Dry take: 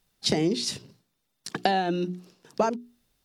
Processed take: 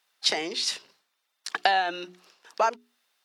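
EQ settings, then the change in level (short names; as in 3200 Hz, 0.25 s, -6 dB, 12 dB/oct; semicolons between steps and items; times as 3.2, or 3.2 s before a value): HPF 1000 Hz 12 dB/oct; high shelf 4900 Hz -11 dB; +8.0 dB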